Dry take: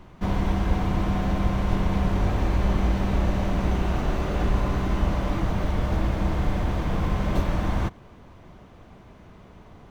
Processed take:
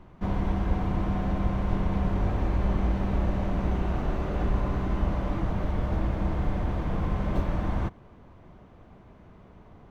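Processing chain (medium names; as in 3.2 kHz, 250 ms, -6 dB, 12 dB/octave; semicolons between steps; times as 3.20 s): treble shelf 2.9 kHz -10.5 dB; trim -3 dB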